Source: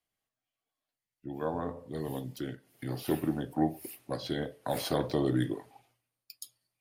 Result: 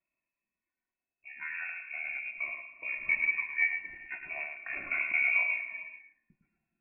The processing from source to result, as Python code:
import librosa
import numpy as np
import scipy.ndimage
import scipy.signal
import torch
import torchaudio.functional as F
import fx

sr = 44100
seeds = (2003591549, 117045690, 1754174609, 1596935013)

y = fx.peak_eq(x, sr, hz=660.0, db=-4.0, octaves=2.1)
y = y + 0.91 * np.pad(y, (int(2.6 * sr / 1000.0), 0))[:len(y)]
y = y + 10.0 ** (-6.5 / 20.0) * np.pad(y, (int(107 * sr / 1000.0), 0))[:len(y)]
y = fx.rev_gated(y, sr, seeds[0], gate_ms=470, shape='flat', drr_db=11.5)
y = fx.freq_invert(y, sr, carrier_hz=2600)
y = fx.notch_cascade(y, sr, direction='falling', hz=0.36)